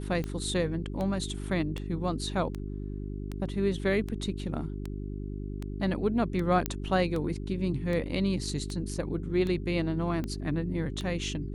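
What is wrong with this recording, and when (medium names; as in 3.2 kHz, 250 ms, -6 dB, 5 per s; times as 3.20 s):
hum 50 Hz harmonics 8 -36 dBFS
tick 78 rpm -22 dBFS
6.66 s: pop -12 dBFS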